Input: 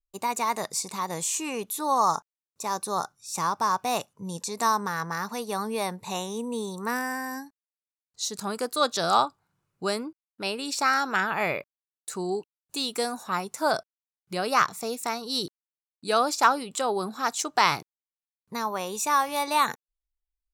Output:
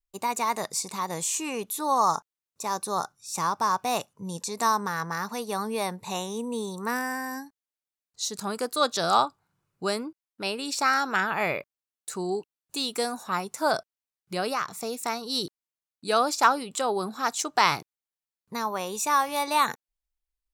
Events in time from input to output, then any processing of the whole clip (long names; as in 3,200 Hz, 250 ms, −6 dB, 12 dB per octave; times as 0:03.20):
0:14.51–0:15.05: downward compressor 2.5 to 1, threshold −27 dBFS